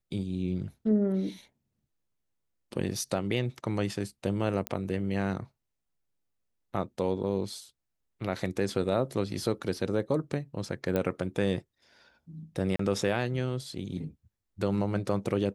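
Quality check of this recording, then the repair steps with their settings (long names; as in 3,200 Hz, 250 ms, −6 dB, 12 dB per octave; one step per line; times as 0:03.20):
0:04.67: click −14 dBFS
0:10.96: click −16 dBFS
0:12.76–0:12.79: drop-out 34 ms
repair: click removal
repair the gap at 0:12.76, 34 ms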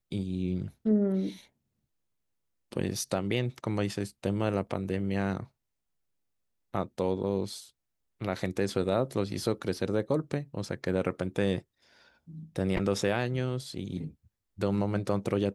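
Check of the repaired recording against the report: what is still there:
none of them is left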